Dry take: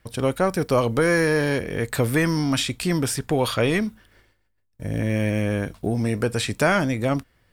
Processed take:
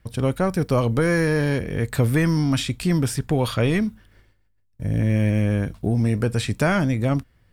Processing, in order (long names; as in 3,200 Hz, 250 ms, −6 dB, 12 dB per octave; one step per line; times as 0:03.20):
bass and treble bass +8 dB, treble −1 dB
level −2.5 dB